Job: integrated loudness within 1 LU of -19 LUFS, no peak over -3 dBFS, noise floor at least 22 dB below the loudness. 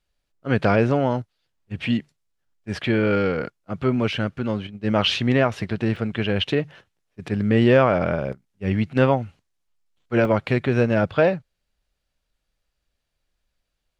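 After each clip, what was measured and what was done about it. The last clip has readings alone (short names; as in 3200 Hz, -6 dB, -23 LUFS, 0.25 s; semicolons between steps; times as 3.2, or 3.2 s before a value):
dropouts 2; longest dropout 1.7 ms; loudness -22.0 LUFS; peak -4.0 dBFS; loudness target -19.0 LUFS
-> interpolate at 5.96/10.25, 1.7 ms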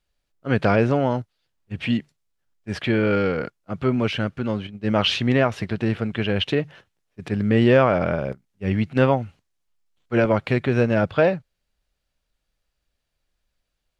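dropouts 0; loudness -22.0 LUFS; peak -4.0 dBFS; loudness target -19.0 LUFS
-> gain +3 dB; limiter -3 dBFS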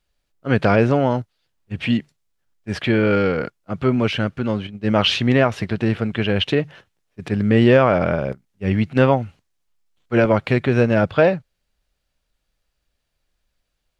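loudness -19.0 LUFS; peak -3.0 dBFS; noise floor -75 dBFS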